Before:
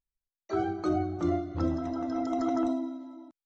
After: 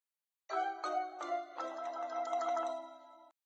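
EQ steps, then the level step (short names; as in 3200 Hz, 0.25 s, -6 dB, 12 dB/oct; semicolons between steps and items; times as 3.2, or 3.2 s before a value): HPF 620 Hz 24 dB/oct; notch 5300 Hz, Q 5.1; 0.0 dB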